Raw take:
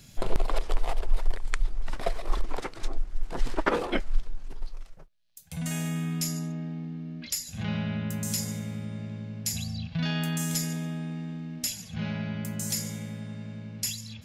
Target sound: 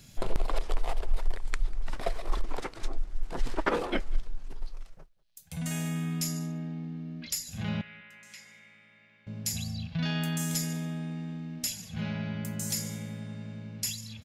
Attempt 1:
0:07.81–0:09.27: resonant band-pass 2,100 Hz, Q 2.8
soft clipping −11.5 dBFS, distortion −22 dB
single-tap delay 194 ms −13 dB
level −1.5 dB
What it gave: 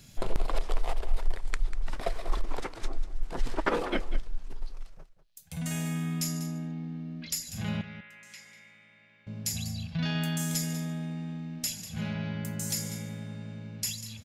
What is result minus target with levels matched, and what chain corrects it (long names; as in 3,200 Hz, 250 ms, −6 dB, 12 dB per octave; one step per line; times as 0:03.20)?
echo-to-direct +11.5 dB
0:07.81–0:09.27: resonant band-pass 2,100 Hz, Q 2.8
soft clipping −11.5 dBFS, distortion −22 dB
single-tap delay 194 ms −24.5 dB
level −1.5 dB